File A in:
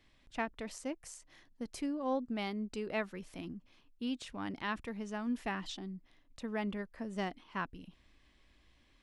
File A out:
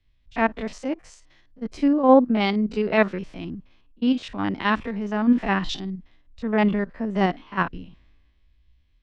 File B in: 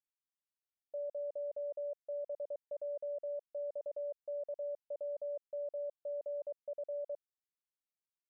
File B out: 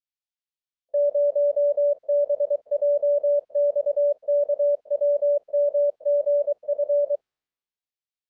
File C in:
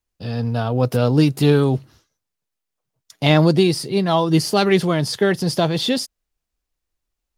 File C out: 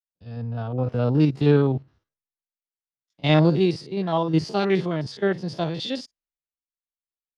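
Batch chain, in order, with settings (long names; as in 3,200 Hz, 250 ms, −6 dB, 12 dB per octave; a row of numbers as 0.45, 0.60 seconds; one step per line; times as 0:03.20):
spectrum averaged block by block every 50 ms
high-frequency loss of the air 140 metres
multiband upward and downward expander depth 70%
loudness normalisation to −23 LKFS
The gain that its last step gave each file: +16.5, +19.5, −4.0 decibels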